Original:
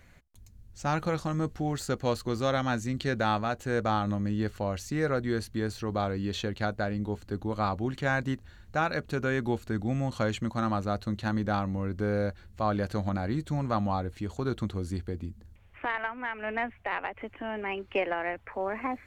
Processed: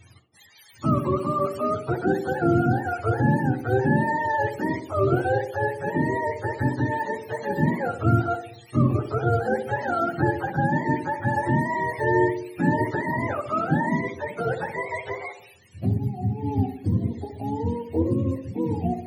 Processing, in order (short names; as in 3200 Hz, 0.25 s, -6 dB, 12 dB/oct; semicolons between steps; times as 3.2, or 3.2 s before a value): spectrum mirrored in octaves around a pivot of 430 Hz; narrowing echo 64 ms, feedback 61%, band-pass 390 Hz, level -6 dB; gain +6.5 dB